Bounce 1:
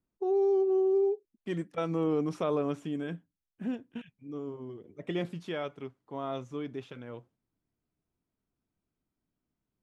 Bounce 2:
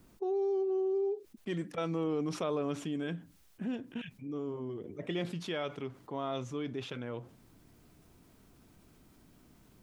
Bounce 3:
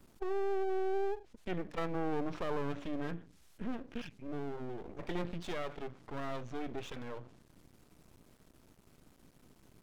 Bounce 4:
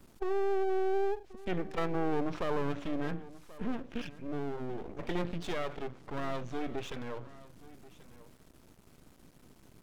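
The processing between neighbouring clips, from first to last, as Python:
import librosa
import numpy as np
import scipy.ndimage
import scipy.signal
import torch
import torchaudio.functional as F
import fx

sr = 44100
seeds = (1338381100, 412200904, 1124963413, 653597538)

y1 = fx.dynamic_eq(x, sr, hz=3900.0, q=0.88, threshold_db=-55.0, ratio=4.0, max_db=5)
y1 = fx.env_flatten(y1, sr, amount_pct=50)
y1 = y1 * 10.0 ** (-6.0 / 20.0)
y2 = fx.env_lowpass_down(y1, sr, base_hz=2200.0, full_db=-32.0)
y2 = np.maximum(y2, 0.0)
y2 = y2 * 10.0 ** (2.5 / 20.0)
y3 = y2 + 10.0 ** (-18.5 / 20.0) * np.pad(y2, (int(1084 * sr / 1000.0), 0))[:len(y2)]
y3 = y3 * 10.0 ** (3.5 / 20.0)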